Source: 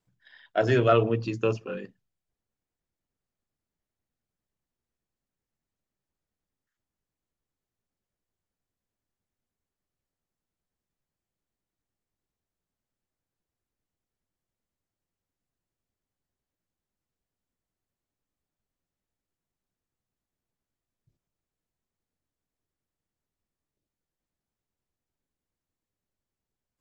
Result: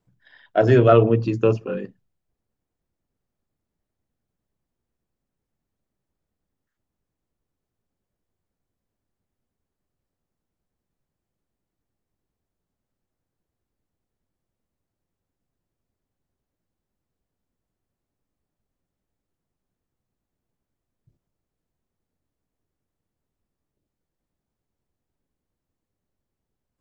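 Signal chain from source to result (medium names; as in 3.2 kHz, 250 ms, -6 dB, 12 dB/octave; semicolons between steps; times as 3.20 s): tilt shelf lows +5 dB, about 1.3 kHz; trim +3.5 dB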